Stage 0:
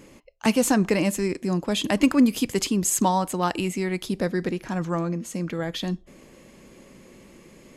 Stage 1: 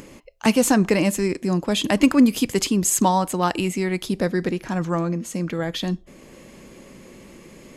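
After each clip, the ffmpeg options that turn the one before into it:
-af "acompressor=mode=upward:threshold=0.00794:ratio=2.5,volume=1.41"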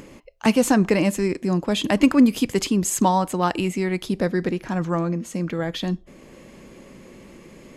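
-af "highshelf=f=4500:g=-5.5"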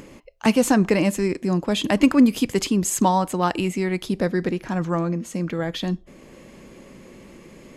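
-af anull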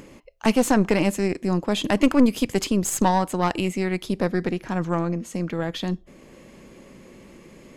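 -af "aeval=exprs='(tanh(3.55*val(0)+0.65)-tanh(0.65))/3.55':c=same,volume=1.19"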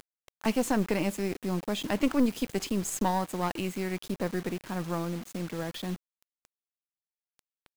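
-af "acrusher=bits=5:mix=0:aa=0.000001,volume=0.398"

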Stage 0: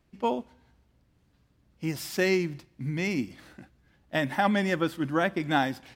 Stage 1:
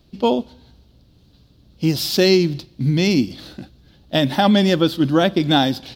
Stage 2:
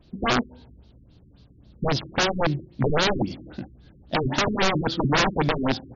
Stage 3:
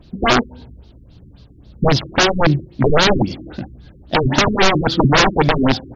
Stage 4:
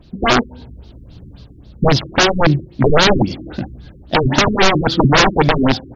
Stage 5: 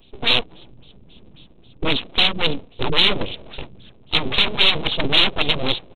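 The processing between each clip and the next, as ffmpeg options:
-filter_complex "[0:a]equalizer=f=1000:t=o:w=1:g=-5,equalizer=f=2000:t=o:w=1:g=-12,equalizer=f=4000:t=o:w=1:g=12,equalizer=f=8000:t=o:w=1:g=-8,asplit=2[s0][s1];[s1]alimiter=limit=0.075:level=0:latency=1:release=257,volume=0.841[s2];[s0][s2]amix=inputs=2:normalize=0,volume=2.66"
-af "aeval=exprs='(mod(5.01*val(0)+1,2)-1)/5.01':c=same,afftfilt=real='re*lt(b*sr/1024,390*pow(7200/390,0.5+0.5*sin(2*PI*3.7*pts/sr)))':imag='im*lt(b*sr/1024,390*pow(7200/390,0.5+0.5*sin(2*PI*3.7*pts/sr)))':win_size=1024:overlap=0.75"
-af "aphaser=in_gain=1:out_gain=1:delay=3.3:decay=0.28:speed=1.6:type=triangular,volume=2.51"
-af "dynaudnorm=f=100:g=7:m=1.88"
-af "aresample=8000,aeval=exprs='abs(val(0))':c=same,aresample=44100,aexciter=amount=7:drive=3.4:freq=2500,volume=0.447"

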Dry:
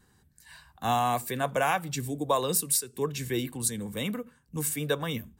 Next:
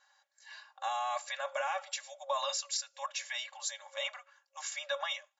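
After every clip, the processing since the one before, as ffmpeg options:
-af "afftfilt=real='re*between(b*sr/4096,540,7500)':imag='im*between(b*sr/4096,540,7500)':win_size=4096:overlap=0.75,alimiter=level_in=1.12:limit=0.0631:level=0:latency=1:release=21,volume=0.891,aecho=1:1:3.6:0.78,volume=0.891"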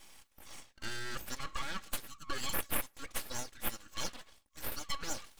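-af "equalizer=f=1200:w=1:g=-13,areverse,acompressor=mode=upward:threshold=0.00501:ratio=2.5,areverse,aeval=exprs='abs(val(0))':c=same,volume=1.78"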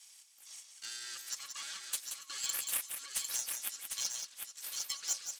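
-filter_complex "[0:a]bandpass=f=7100:t=q:w=1.2:csg=0,asplit=2[s0][s1];[s1]acrusher=bits=5:mix=0:aa=0.000001,volume=0.376[s2];[s0][s2]amix=inputs=2:normalize=0,aecho=1:1:178|752:0.447|0.562,volume=2"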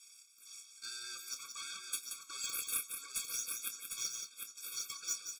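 -filter_complex "[0:a]asplit=2[s0][s1];[s1]adelay=27,volume=0.282[s2];[s0][s2]amix=inputs=2:normalize=0,afftfilt=real='re*eq(mod(floor(b*sr/1024/540),2),0)':imag='im*eq(mod(floor(b*sr/1024/540),2),0)':win_size=1024:overlap=0.75,volume=1.12"

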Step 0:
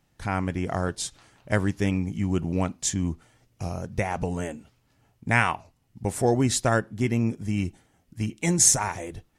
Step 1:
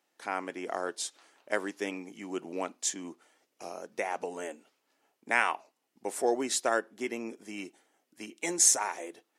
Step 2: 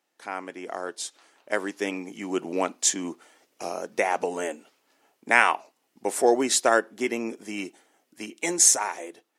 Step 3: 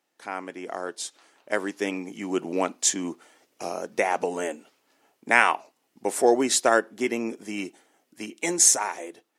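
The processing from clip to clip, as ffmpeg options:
-af "highpass=f=320:w=0.5412,highpass=f=320:w=1.3066,volume=0.631"
-af "dynaudnorm=f=760:g=5:m=3.35"
-af "lowshelf=f=200:g=4.5"

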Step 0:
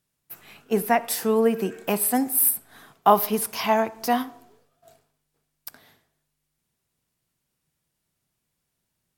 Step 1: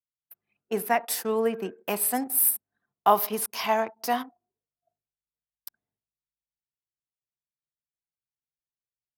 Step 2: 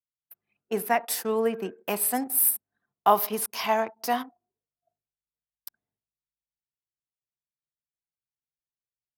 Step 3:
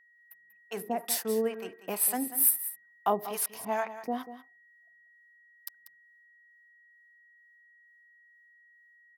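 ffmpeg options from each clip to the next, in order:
-af "anlmdn=6.31,highpass=56,lowshelf=f=270:g=-10,volume=0.794"
-af anull
-filter_complex "[0:a]acrossover=split=620[s0][s1];[s0]aeval=exprs='val(0)*(1-1/2+1/2*cos(2*PI*2.2*n/s))':c=same[s2];[s1]aeval=exprs='val(0)*(1-1/2-1/2*cos(2*PI*2.2*n/s))':c=same[s3];[s2][s3]amix=inputs=2:normalize=0,aeval=exprs='val(0)+0.001*sin(2*PI*1900*n/s)':c=same,aecho=1:1:190:0.224"

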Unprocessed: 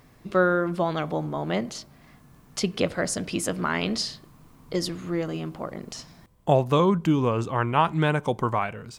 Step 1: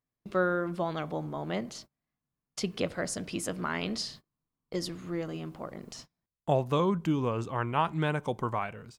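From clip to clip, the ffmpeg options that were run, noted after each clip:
-af "agate=range=0.0316:threshold=0.00891:ratio=16:detection=peak,volume=0.473"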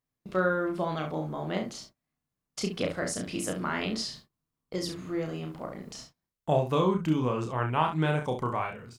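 -af "aecho=1:1:32|67:0.596|0.355"

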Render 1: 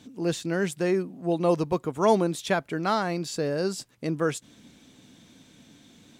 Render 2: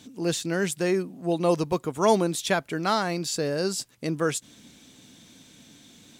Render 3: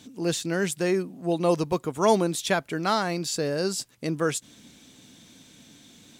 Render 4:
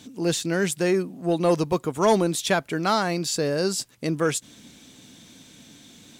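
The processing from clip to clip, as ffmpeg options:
-af "highshelf=f=3100:g=7.5"
-af anull
-af "asoftclip=type=tanh:threshold=0.237,volume=1.41"

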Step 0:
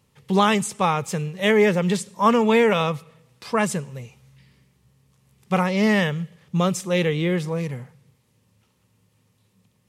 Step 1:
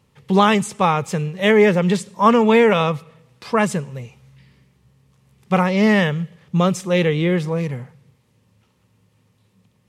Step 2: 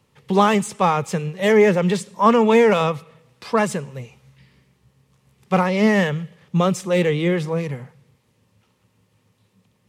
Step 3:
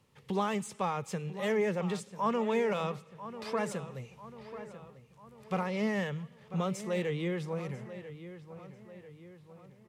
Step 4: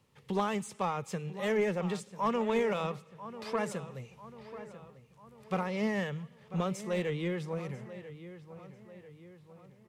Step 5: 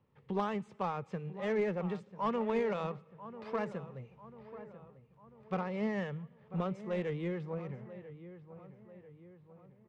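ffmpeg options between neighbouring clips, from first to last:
-af "highshelf=f=5300:g=-7.5,volume=1.58"
-filter_complex "[0:a]acrossover=split=250|1200[s0][s1][s2];[s0]tremolo=f=7:d=0.65[s3];[s2]asoftclip=type=tanh:threshold=0.0944[s4];[s3][s1][s4]amix=inputs=3:normalize=0"
-filter_complex "[0:a]acompressor=threshold=0.0126:ratio=1.5,asplit=2[s0][s1];[s1]adelay=993,lowpass=f=3200:p=1,volume=0.224,asplit=2[s2][s3];[s3]adelay=993,lowpass=f=3200:p=1,volume=0.51,asplit=2[s4][s5];[s5]adelay=993,lowpass=f=3200:p=1,volume=0.51,asplit=2[s6][s7];[s7]adelay=993,lowpass=f=3200:p=1,volume=0.51,asplit=2[s8][s9];[s9]adelay=993,lowpass=f=3200:p=1,volume=0.51[s10];[s0][s2][s4][s6][s8][s10]amix=inputs=6:normalize=0,volume=0.501"
-filter_complex "[0:a]aeval=exprs='0.141*(cos(1*acos(clip(val(0)/0.141,-1,1)))-cos(1*PI/2))+0.0224*(cos(3*acos(clip(val(0)/0.141,-1,1)))-cos(3*PI/2))+0.0158*(cos(4*acos(clip(val(0)/0.141,-1,1)))-cos(4*PI/2))+0.01*(cos(6*acos(clip(val(0)/0.141,-1,1)))-cos(6*PI/2))+0.00158*(cos(8*acos(clip(val(0)/0.141,-1,1)))-cos(8*PI/2))':c=same,acrossover=split=5100[s0][s1];[s0]aeval=exprs='clip(val(0),-1,0.0596)':c=same[s2];[s2][s1]amix=inputs=2:normalize=0,volume=1.68"
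-af "adynamicsmooth=sensitivity=2.5:basefreq=2000,volume=0.75"

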